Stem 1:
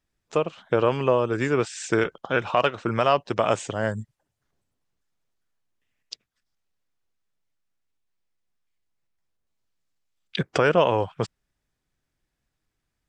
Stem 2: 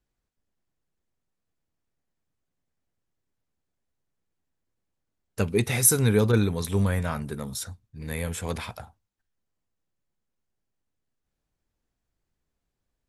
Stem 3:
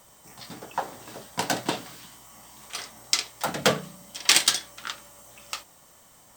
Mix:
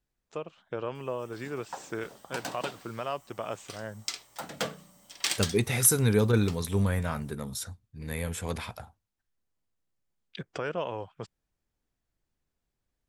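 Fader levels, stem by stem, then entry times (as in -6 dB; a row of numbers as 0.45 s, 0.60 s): -13.5 dB, -2.5 dB, -11.0 dB; 0.00 s, 0.00 s, 0.95 s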